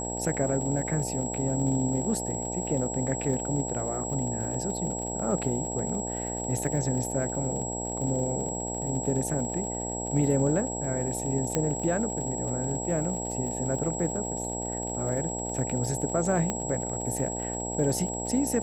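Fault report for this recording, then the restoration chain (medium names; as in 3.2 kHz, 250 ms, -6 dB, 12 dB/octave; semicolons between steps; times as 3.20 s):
buzz 60 Hz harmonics 15 -35 dBFS
crackle 58 per s -36 dBFS
whine 7.7 kHz -34 dBFS
11.55 s: pop -11 dBFS
16.50 s: pop -15 dBFS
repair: de-click; de-hum 60 Hz, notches 15; band-stop 7.7 kHz, Q 30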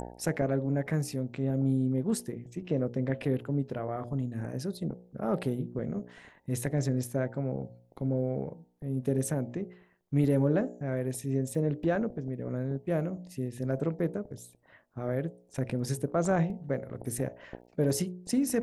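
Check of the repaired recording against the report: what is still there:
11.55 s: pop
16.50 s: pop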